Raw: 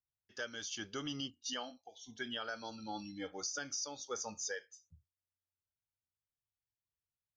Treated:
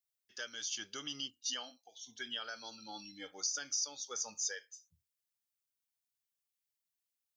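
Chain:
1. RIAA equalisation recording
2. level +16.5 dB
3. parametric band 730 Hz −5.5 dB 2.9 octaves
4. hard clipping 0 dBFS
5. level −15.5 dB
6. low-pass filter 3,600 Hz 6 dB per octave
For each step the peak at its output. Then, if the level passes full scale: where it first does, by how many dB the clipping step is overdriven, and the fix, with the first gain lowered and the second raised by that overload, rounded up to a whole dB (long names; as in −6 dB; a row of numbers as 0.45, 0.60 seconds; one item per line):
−18.5, −2.0, −2.5, −2.5, −18.0, −23.5 dBFS
no step passes full scale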